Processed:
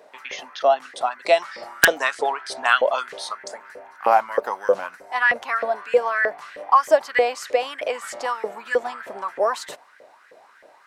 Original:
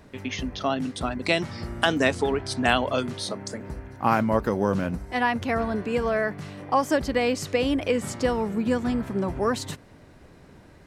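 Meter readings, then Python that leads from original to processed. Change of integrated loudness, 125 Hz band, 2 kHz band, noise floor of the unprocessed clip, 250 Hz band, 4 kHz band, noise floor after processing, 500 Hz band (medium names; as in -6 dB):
+3.5 dB, under -20 dB, +7.0 dB, -51 dBFS, -16.5 dB, +0.5 dB, -53 dBFS, +4.0 dB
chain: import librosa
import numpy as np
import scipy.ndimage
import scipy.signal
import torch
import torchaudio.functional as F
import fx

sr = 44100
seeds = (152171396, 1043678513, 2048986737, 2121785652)

y = fx.filter_lfo_highpass(x, sr, shape='saw_up', hz=3.2, low_hz=480.0, high_hz=1900.0, q=5.7)
y = (np.mod(10.0 ** (0.0 / 20.0) * y + 1.0, 2.0) - 1.0) / 10.0 ** (0.0 / 20.0)
y = y * 10.0 ** (-1.0 / 20.0)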